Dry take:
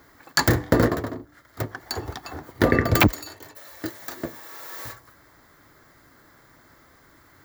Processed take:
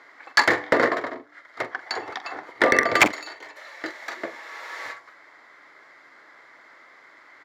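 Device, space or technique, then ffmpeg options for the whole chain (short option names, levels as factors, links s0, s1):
megaphone: -filter_complex "[0:a]highpass=540,lowpass=3900,equalizer=f=2100:t=o:w=0.3:g=8.5,asoftclip=type=hard:threshold=0.251,asplit=2[s0][s1];[s1]adelay=44,volume=0.2[s2];[s0][s2]amix=inputs=2:normalize=0,volume=1.68"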